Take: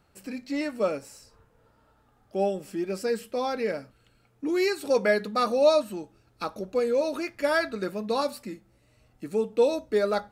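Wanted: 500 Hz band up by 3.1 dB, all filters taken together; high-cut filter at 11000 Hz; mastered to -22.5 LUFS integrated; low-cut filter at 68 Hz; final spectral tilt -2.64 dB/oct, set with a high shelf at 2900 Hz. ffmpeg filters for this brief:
-af "highpass=68,lowpass=11k,equalizer=f=500:t=o:g=3.5,highshelf=f=2.9k:g=5,volume=2dB"

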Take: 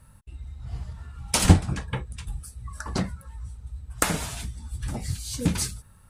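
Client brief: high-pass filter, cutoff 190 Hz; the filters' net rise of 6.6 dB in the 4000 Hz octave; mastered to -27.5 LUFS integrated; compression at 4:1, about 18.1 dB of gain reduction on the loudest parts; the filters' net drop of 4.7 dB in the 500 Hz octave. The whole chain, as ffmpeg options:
-af "highpass=190,equalizer=f=500:t=o:g=-6,equalizer=f=4k:t=o:g=8.5,acompressor=threshold=-40dB:ratio=4,volume=14.5dB"

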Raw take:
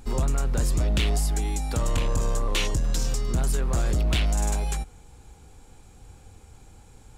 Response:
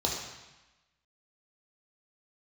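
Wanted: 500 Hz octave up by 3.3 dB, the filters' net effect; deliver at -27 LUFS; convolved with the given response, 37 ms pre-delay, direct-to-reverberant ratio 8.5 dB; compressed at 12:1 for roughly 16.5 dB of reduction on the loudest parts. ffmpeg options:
-filter_complex "[0:a]equalizer=f=500:t=o:g=4,acompressor=threshold=-37dB:ratio=12,asplit=2[a][b];[1:a]atrim=start_sample=2205,adelay=37[c];[b][c]afir=irnorm=-1:irlink=0,volume=-17dB[d];[a][d]amix=inputs=2:normalize=0,volume=15.5dB"

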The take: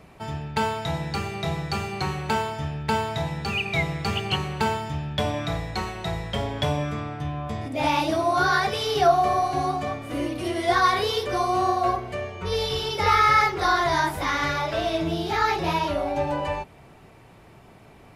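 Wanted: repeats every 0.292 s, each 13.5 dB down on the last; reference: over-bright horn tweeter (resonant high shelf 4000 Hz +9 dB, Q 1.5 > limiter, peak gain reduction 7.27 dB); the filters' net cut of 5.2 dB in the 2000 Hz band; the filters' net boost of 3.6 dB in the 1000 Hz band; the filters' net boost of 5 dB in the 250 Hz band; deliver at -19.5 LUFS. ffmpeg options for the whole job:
-af "equalizer=f=250:t=o:g=7,equalizer=f=1k:t=o:g=7,equalizer=f=2k:t=o:g=-8.5,highshelf=f=4k:t=q:w=1.5:g=9,aecho=1:1:292|584:0.211|0.0444,volume=4dB,alimiter=limit=-8.5dB:level=0:latency=1"

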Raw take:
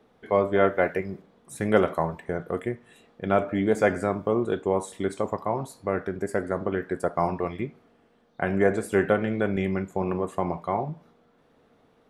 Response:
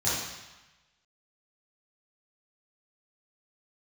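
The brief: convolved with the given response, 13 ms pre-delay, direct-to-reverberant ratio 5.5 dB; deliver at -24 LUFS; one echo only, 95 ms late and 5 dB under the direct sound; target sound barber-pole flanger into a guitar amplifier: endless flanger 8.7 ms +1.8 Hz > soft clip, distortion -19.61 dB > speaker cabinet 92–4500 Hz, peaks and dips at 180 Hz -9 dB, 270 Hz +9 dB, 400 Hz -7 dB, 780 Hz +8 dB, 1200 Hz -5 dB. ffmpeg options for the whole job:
-filter_complex "[0:a]aecho=1:1:95:0.562,asplit=2[a][b];[1:a]atrim=start_sample=2205,adelay=13[c];[b][c]afir=irnorm=-1:irlink=0,volume=-16.5dB[d];[a][d]amix=inputs=2:normalize=0,asplit=2[e][f];[f]adelay=8.7,afreqshift=1.8[g];[e][g]amix=inputs=2:normalize=1,asoftclip=threshold=-14dB,highpass=92,equalizer=f=180:t=q:w=4:g=-9,equalizer=f=270:t=q:w=4:g=9,equalizer=f=400:t=q:w=4:g=-7,equalizer=f=780:t=q:w=4:g=8,equalizer=f=1.2k:t=q:w=4:g=-5,lowpass=f=4.5k:w=0.5412,lowpass=f=4.5k:w=1.3066,volume=3.5dB"

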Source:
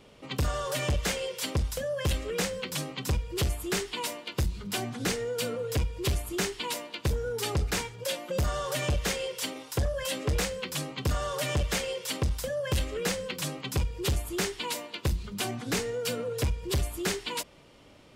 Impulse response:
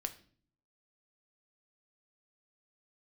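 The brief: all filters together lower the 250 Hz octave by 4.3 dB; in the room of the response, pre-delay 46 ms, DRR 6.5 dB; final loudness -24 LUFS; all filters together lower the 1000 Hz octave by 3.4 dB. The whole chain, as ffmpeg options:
-filter_complex "[0:a]equalizer=f=250:t=o:g=-6.5,equalizer=f=1k:t=o:g=-4,asplit=2[a][b];[1:a]atrim=start_sample=2205,adelay=46[c];[b][c]afir=irnorm=-1:irlink=0,volume=-5.5dB[d];[a][d]amix=inputs=2:normalize=0,volume=7.5dB"

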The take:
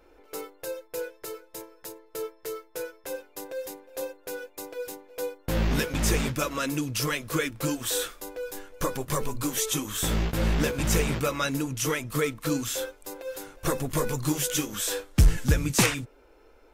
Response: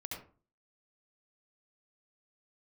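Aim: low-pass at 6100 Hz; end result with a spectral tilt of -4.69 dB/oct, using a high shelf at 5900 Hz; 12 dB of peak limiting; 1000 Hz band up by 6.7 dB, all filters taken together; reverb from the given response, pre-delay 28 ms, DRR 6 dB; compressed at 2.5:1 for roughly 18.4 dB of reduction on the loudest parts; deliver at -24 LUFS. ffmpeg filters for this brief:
-filter_complex "[0:a]lowpass=6.1k,equalizer=f=1k:t=o:g=8.5,highshelf=f=5.9k:g=-5.5,acompressor=threshold=-43dB:ratio=2.5,alimiter=level_in=10dB:limit=-24dB:level=0:latency=1,volume=-10dB,asplit=2[a][b];[1:a]atrim=start_sample=2205,adelay=28[c];[b][c]afir=irnorm=-1:irlink=0,volume=-5dB[d];[a][d]amix=inputs=2:normalize=0,volume=19.5dB"

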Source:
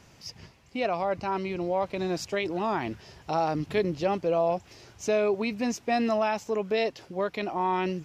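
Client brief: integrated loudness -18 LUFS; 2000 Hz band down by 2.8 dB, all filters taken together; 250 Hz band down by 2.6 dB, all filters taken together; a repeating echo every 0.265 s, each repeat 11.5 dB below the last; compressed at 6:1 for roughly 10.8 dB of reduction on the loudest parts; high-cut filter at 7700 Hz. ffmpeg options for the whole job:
-af "lowpass=7.7k,equalizer=f=250:t=o:g=-3.5,equalizer=f=2k:t=o:g=-3.5,acompressor=threshold=-34dB:ratio=6,aecho=1:1:265|530|795:0.266|0.0718|0.0194,volume=20dB"

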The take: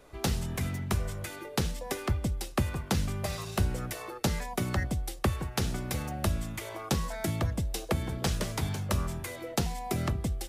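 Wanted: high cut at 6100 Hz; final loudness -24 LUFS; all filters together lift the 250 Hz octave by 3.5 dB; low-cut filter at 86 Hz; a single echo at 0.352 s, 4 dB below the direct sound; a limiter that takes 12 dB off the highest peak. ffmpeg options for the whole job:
-af "highpass=86,lowpass=6.1k,equalizer=f=250:t=o:g=5,alimiter=level_in=1dB:limit=-24dB:level=0:latency=1,volume=-1dB,aecho=1:1:352:0.631,volume=10.5dB"

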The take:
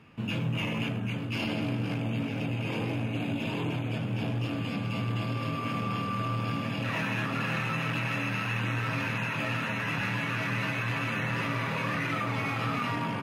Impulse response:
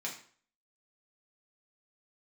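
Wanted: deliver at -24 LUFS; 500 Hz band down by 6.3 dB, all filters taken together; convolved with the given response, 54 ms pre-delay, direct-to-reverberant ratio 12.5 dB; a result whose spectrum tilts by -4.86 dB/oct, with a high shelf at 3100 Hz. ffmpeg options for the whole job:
-filter_complex "[0:a]equalizer=f=500:t=o:g=-8,highshelf=f=3.1k:g=-5,asplit=2[a][b];[1:a]atrim=start_sample=2205,adelay=54[c];[b][c]afir=irnorm=-1:irlink=0,volume=-14.5dB[d];[a][d]amix=inputs=2:normalize=0,volume=8dB"

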